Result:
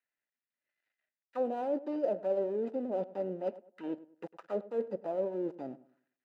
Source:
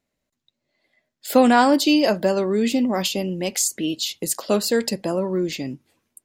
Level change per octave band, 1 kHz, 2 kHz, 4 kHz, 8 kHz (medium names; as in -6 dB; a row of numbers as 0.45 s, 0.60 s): -18.5 dB, -28.5 dB, under -35 dB, under -40 dB